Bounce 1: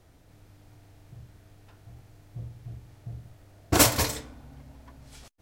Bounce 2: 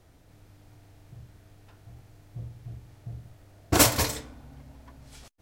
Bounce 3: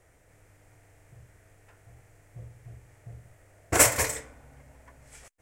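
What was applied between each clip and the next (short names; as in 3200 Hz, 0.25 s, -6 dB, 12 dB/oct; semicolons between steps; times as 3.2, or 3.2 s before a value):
nothing audible
ten-band EQ 250 Hz -6 dB, 500 Hz +7 dB, 2000 Hz +11 dB, 4000 Hz -9 dB, 8000 Hz +11 dB; gain -5 dB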